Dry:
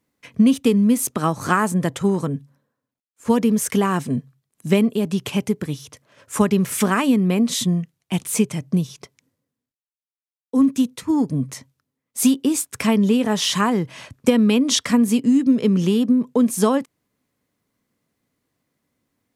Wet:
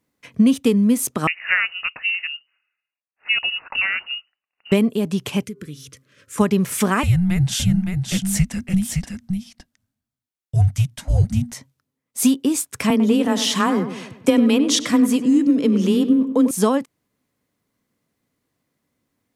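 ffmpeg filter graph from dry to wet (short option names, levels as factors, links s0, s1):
-filter_complex "[0:a]asettb=1/sr,asplit=3[s0][s1][s2];[s0]atrim=end=1.274[s3];[s1]atrim=start=1.27:end=4.72,asetpts=PTS-STARTPTS,afade=t=in:d=0.004:c=qsin,afade=t=out:st=3.446:d=0.004:c=qsin,highpass=f=290:w=0.5412,highpass=f=290:w=1.3066,lowpass=f=2600:t=q:w=0.5098,lowpass=f=2600:t=q:w=0.6013,lowpass=f=2600:t=q:w=0.9,lowpass=f=2600:t=q:w=2.563,afreqshift=-3100[s4];[s2]atrim=start=4.716[s5];[s3][s4]acrossfade=d=0.004:c1=hsin:c2=qsin[s6];[s6][s5]acrossfade=d=0.004:c1=qsin:c2=hsin,asettb=1/sr,asplit=3[s7][s8][s9];[s7]atrim=end=5.434[s10];[s8]atrim=start=5.43:end=6.38,asetpts=PTS-STARTPTS,afade=t=in:d=0.004:c=qsin,afade=t=out:st=0.946:d=0.004:c=qsin,bandreject=f=132.9:t=h:w=4,bandreject=f=265.8:t=h:w=4,bandreject=f=398.7:t=h:w=4,bandreject=f=531.6:t=h:w=4,bandreject=f=664.5:t=h:w=4,bandreject=f=797.4:t=h:w=4,bandreject=f=930.3:t=h:w=4,bandreject=f=1063.2:t=h:w=4,bandreject=f=1196.1:t=h:w=4,bandreject=f=1329:t=h:w=4,bandreject=f=1461.9:t=h:w=4,acompressor=threshold=0.0178:ratio=2:attack=3.2:release=140:knee=1:detection=peak,asuperstop=centerf=800:order=4:qfactor=0.99[s11];[s9]atrim=start=6.376[s12];[s10][s11]acrossfade=d=0.004:c1=hsin:c2=qsin[s13];[s13][s12]acrossfade=d=0.004:c1=qsin:c2=hsin,asettb=1/sr,asplit=3[s14][s15][s16];[s14]atrim=end=7.034[s17];[s15]atrim=start=7.03:end=11.53,asetpts=PTS-STARTPTS,afade=t=in:d=0.004:c=qsin,afade=t=out:st=4.496:d=0.004:c=qsin,afreqshift=-370,aecho=1:1:565:0.562,atrim=end_sample=198450[s18];[s16]atrim=start=11.526[s19];[s17][s18]acrossfade=d=0.004:c1=hsin:c2=qsin[s20];[s20][s19]acrossfade=d=0.004:c1=qsin:c2=hsin,asettb=1/sr,asplit=3[s21][s22][s23];[s21]atrim=end=12.904[s24];[s22]atrim=start=12.9:end=16.51,asetpts=PTS-STARTPTS,afade=t=in:d=0.004:c=qsin,afade=t=out:st=3.606:d=0.004:c=qsin,afreqshift=19,asplit=2[s25][s26];[s26]adelay=97,lowpass=f=2300:p=1,volume=0.316,asplit=2[s27][s28];[s28]adelay=97,lowpass=f=2300:p=1,volume=0.51,asplit=2[s29][s30];[s30]adelay=97,lowpass=f=2300:p=1,volume=0.51,asplit=2[s31][s32];[s32]adelay=97,lowpass=f=2300:p=1,volume=0.51,asplit=2[s33][s34];[s34]adelay=97,lowpass=f=2300:p=1,volume=0.51,asplit=2[s35][s36];[s36]adelay=97,lowpass=f=2300:p=1,volume=0.51[s37];[s25][s27][s29][s31][s33][s35][s37]amix=inputs=7:normalize=0,atrim=end_sample=159201[s38];[s23]atrim=start=16.506[s39];[s24][s38]acrossfade=d=0.004:c1=hsin:c2=qsin[s40];[s40][s39]acrossfade=d=0.004:c1=qsin:c2=hsin"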